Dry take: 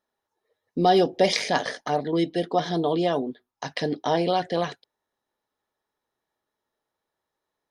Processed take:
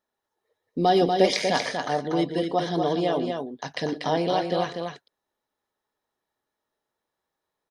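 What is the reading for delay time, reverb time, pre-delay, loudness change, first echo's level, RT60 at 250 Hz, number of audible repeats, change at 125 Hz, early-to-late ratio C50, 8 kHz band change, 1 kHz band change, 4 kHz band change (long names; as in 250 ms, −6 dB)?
118 ms, no reverb audible, no reverb audible, −0.5 dB, −17.0 dB, no reverb audible, 2, 0.0 dB, no reverb audible, 0.0 dB, 0.0 dB, −0.5 dB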